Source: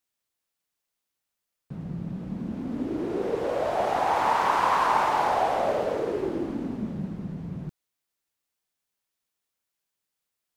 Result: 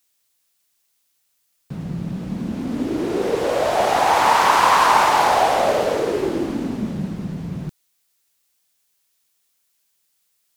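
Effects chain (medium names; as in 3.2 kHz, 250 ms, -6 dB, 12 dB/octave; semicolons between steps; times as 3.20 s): treble shelf 2.5 kHz +10.5 dB; trim +6.5 dB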